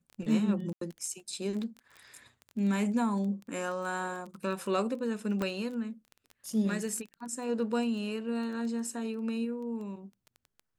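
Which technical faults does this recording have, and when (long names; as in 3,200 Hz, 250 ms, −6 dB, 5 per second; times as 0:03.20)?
surface crackle 13 per second −37 dBFS
0:00.73–0:00.81: drop-out 83 ms
0:05.42: click −19 dBFS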